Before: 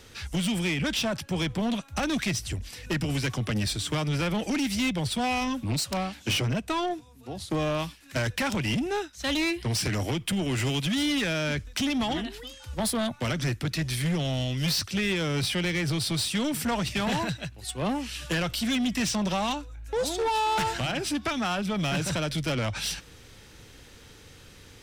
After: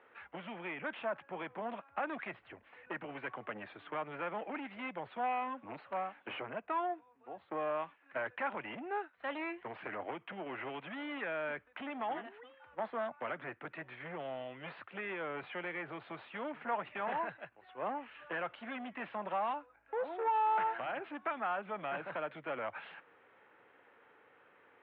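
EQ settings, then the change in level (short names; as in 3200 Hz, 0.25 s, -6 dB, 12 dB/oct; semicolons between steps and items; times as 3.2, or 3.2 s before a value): Gaussian blur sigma 4.7 samples; HPF 730 Hz 12 dB/oct; air absorption 170 m; 0.0 dB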